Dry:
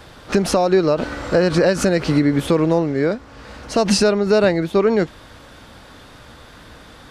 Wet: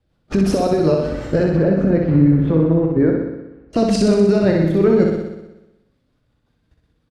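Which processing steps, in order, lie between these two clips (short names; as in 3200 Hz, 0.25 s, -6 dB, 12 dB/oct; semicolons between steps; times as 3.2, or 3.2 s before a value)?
bin magnitudes rounded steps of 15 dB; 1.43–3.73 LPF 1600 Hz 12 dB/oct; gate -32 dBFS, range -20 dB; low shelf 370 Hz +11.5 dB; level quantiser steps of 13 dB; rotary speaker horn 5.5 Hz; doubler 25 ms -11 dB; flutter echo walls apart 10.6 m, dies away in 1 s; gain -1 dB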